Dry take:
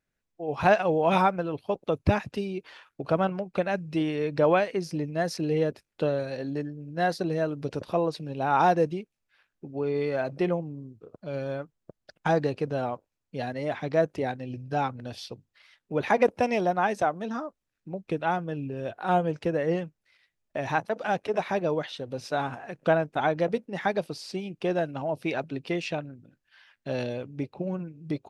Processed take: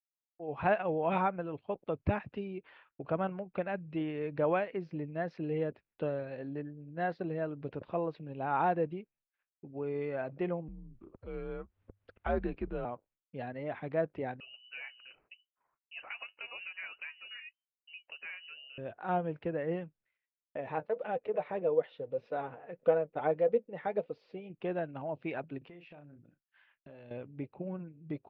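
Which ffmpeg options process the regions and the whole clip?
-filter_complex "[0:a]asettb=1/sr,asplit=3[a][b][c];[a]atrim=end=10.684[d];[b]atrim=start=10.68:end=12.85,asetpts=PTS-STARTPTS,afade=t=in:d=0.004:c=qsin,afade=t=out:st=2.166:d=0.004:c=qsin,acompressor=mode=upward:threshold=-37dB:ratio=2.5:attack=3.2:release=140:knee=2.83:detection=peak,afreqshift=-100[e];[c]atrim=start=12.846[f];[d][e]acrossfade=d=0.004:c1=hsin:c2=qsin[g];[g][f]acrossfade=d=0.004:c1=qsin:c2=hsin,asettb=1/sr,asplit=3[h][i][j];[h]atrim=end=14.404[k];[i]atrim=start=14.4:end=18.78,asetpts=PTS-STARTPTS,afade=t=in:d=0.004:c=qsin,afade=t=out:st=4.376:d=0.004:c=qsin,acrossover=split=150|1300[l][m][n];[l]acompressor=threshold=-50dB:ratio=4[o];[m]acompressor=threshold=-30dB:ratio=4[p];[n]acompressor=threshold=-35dB:ratio=4[q];[o][p][q]amix=inputs=3:normalize=0,flanger=delay=1.7:depth=8.3:regen=59:speed=1.3:shape=sinusoidal,lowpass=f=2.6k:t=q:w=0.5098,lowpass=f=2.6k:t=q:w=0.6013,lowpass=f=2.6k:t=q:w=0.9,lowpass=f=2.6k:t=q:w=2.563,afreqshift=-3100[r];[j]atrim=start=18.776[s];[k][r]acrossfade=d=0.004:c1=hsin:c2=qsin[t];[t][s]acrossfade=d=0.004:c1=qsin:c2=hsin,asettb=1/sr,asplit=3[u][v][w];[u]atrim=end=20.574[x];[v]atrim=start=20.57:end=24.5,asetpts=PTS-STARTPTS,afade=t=in:d=0.004:c=qsin,afade=t=out:st=3.926:d=0.004:c=qsin,flanger=delay=3.9:depth=2.9:regen=53:speed=1.7:shape=sinusoidal,equalizer=f=490:t=o:w=0.51:g=13.5,bandreject=f=1.6k:w=18[y];[w]atrim=start=24.496[z];[x][y]acrossfade=d=0.004:c1=hsin:c2=qsin[aa];[aa][z]acrossfade=d=0.004:c1=qsin:c2=hsin,asettb=1/sr,asplit=3[ab][ac][ad];[ab]atrim=end=25.584[ae];[ac]atrim=start=25.58:end=27.11,asetpts=PTS-STARTPTS,afade=t=in:d=0.004:c=qsin,afade=t=out:st=1.526:d=0.004:c=qsin,asplit=2[af][ag];[ag]adelay=34,volume=-9.5dB[ah];[af][ah]amix=inputs=2:normalize=0,atrim=end_sample=67473,acompressor=threshold=-41dB:ratio=8:attack=3.2:release=140:knee=1:detection=peak[ai];[ad]atrim=start=27.106[aj];[ae][ai]acrossfade=d=0.004:c1=hsin:c2=qsin[ak];[ak][aj]acrossfade=d=0.004:c1=qsin:c2=hsin,lowpass=f=2.8k:w=0.5412,lowpass=f=2.8k:w=1.3066,agate=range=-33dB:threshold=-55dB:ratio=3:detection=peak,volume=-8dB"

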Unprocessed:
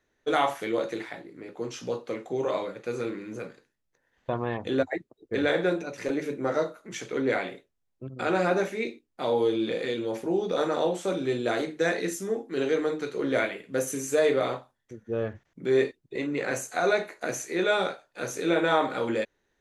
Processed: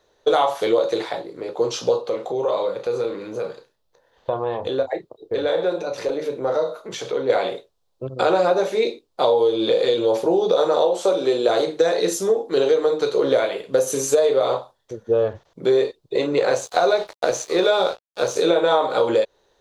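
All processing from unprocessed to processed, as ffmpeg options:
-filter_complex "[0:a]asettb=1/sr,asplit=3[a][b][c];[a]atrim=end=2.014[d];[b]atrim=start=2.01:end=7.3,asetpts=PTS-STARTPTS,afade=t=in:d=0.004:c=qsin,afade=t=out:st=5.286:d=0.004:c=qsin,asplit=2[e][f];[f]adelay=31,volume=-11dB[g];[e][g]amix=inputs=2:normalize=0,atrim=end_sample=233289,acompressor=threshold=-39dB:ratio=2:attack=3.2:release=140:knee=1:detection=peak,equalizer=f=7.3k:t=o:w=1.2:g=-4[h];[c]atrim=start=7.296[i];[d][h]acrossfade=d=0.004:c1=hsin:c2=qsin[j];[j][i]acrossfade=d=0.004:c1=qsin:c2=hsin,asettb=1/sr,asplit=3[k][l][m];[k]atrim=end=10.854[n];[l]atrim=start=10.85:end=11.49,asetpts=PTS-STARTPTS,afade=t=in:d=0.004:c=qsin,afade=t=out:st=0.636:d=0.004:c=qsin,highpass=230,equalizer=f=3.6k:w=6.3:g=-3[o];[m]atrim=start=11.486[p];[n][o]acrossfade=d=0.004:c1=hsin:c2=qsin[q];[q][p]acrossfade=d=0.004:c1=qsin:c2=hsin,asettb=1/sr,asplit=3[r][s][t];[r]atrim=end=16.554[u];[s]atrim=start=16.55:end=18.36,asetpts=PTS-STARTPTS,afade=t=in:d=0.004:c=qsin,afade=t=out:st=1.806:d=0.004:c=qsin,aeval=exprs='sgn(val(0))*max(abs(val(0))-0.00631,0)':c=same,acrossover=split=8600[v][w];[w]acompressor=threshold=-59dB:ratio=4:attack=1:release=60[x];[v][x]amix=inputs=2:normalize=0[y];[t]atrim=start=18.356[z];[u][y]acrossfade=d=0.004:c1=hsin:c2=qsin[aa];[aa][z]acrossfade=d=0.004:c1=qsin:c2=hsin,equalizer=f=250:t=o:w=1:g=-7,equalizer=f=500:t=o:w=1:g=10,equalizer=f=1k:t=o:w=1:g=7,equalizer=f=2k:t=o:w=1:g=-8,equalizer=f=4k:t=o:w=1:g=10,acompressor=threshold=-22dB:ratio=6,volume=7.5dB"

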